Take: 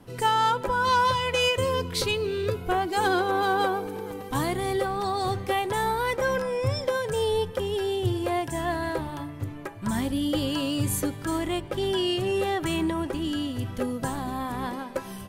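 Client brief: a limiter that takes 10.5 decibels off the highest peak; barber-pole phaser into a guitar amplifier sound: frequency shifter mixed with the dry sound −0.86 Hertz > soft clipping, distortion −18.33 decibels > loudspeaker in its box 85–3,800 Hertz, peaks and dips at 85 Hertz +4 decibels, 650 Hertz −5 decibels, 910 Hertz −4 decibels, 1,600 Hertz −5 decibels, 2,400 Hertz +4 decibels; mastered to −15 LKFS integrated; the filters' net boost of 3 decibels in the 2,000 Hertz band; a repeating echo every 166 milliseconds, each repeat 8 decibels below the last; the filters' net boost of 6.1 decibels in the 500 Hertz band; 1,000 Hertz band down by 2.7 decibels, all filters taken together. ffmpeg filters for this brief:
ffmpeg -i in.wav -filter_complex "[0:a]equalizer=frequency=500:width_type=o:gain=9,equalizer=frequency=1000:width_type=o:gain=-3.5,equalizer=frequency=2000:width_type=o:gain=6,alimiter=limit=-18dB:level=0:latency=1,aecho=1:1:166|332|498|664|830:0.398|0.159|0.0637|0.0255|0.0102,asplit=2[link_01][link_02];[link_02]afreqshift=-0.86[link_03];[link_01][link_03]amix=inputs=2:normalize=1,asoftclip=threshold=-21dB,highpass=85,equalizer=frequency=85:width_type=q:width=4:gain=4,equalizer=frequency=650:width_type=q:width=4:gain=-5,equalizer=frequency=910:width_type=q:width=4:gain=-4,equalizer=frequency=1600:width_type=q:width=4:gain=-5,equalizer=frequency=2400:width_type=q:width=4:gain=4,lowpass=frequency=3800:width=0.5412,lowpass=frequency=3800:width=1.3066,volume=16dB" out.wav

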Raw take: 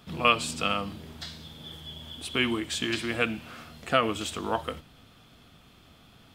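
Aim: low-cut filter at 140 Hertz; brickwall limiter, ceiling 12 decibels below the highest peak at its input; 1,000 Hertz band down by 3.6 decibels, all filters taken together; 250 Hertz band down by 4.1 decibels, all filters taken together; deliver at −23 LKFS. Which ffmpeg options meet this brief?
ffmpeg -i in.wav -af "highpass=140,equalizer=frequency=250:width_type=o:gain=-4.5,equalizer=frequency=1000:width_type=o:gain=-4.5,volume=11.5dB,alimiter=limit=-8.5dB:level=0:latency=1" out.wav

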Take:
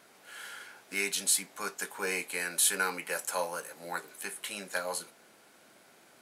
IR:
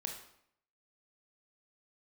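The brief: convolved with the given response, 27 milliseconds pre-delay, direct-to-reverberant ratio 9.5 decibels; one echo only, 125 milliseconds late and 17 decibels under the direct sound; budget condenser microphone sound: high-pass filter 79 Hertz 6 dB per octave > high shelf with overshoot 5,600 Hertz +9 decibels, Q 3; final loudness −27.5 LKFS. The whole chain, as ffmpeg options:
-filter_complex "[0:a]aecho=1:1:125:0.141,asplit=2[link_01][link_02];[1:a]atrim=start_sample=2205,adelay=27[link_03];[link_02][link_03]afir=irnorm=-1:irlink=0,volume=-9dB[link_04];[link_01][link_04]amix=inputs=2:normalize=0,highpass=frequency=79:poles=1,highshelf=frequency=5600:width_type=q:width=3:gain=9,volume=-7dB"

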